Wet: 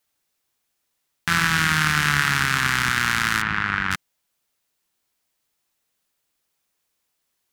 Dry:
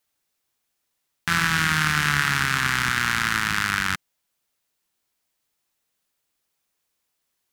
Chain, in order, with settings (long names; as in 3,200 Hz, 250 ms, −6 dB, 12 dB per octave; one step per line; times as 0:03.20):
0:03.42–0:03.91: low-pass filter 2,400 Hz 12 dB per octave
level +1.5 dB